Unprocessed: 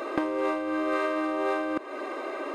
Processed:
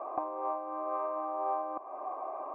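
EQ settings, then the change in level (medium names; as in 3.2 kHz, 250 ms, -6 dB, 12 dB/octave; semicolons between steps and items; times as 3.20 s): cascade formant filter a; +8.0 dB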